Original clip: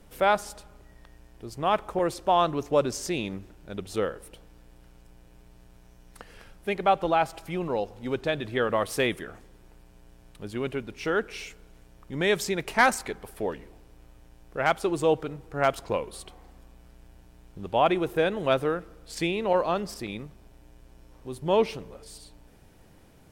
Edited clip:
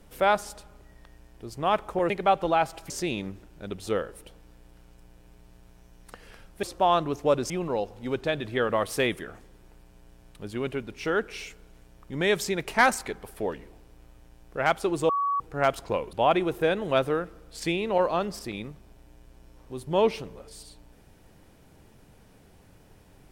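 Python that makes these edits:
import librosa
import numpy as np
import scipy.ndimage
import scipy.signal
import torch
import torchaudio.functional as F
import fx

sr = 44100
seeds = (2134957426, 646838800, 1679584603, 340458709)

y = fx.edit(x, sr, fx.swap(start_s=2.1, length_s=0.87, other_s=6.7, other_length_s=0.8),
    fx.bleep(start_s=15.09, length_s=0.31, hz=1130.0, db=-23.0),
    fx.cut(start_s=16.13, length_s=1.55), tone=tone)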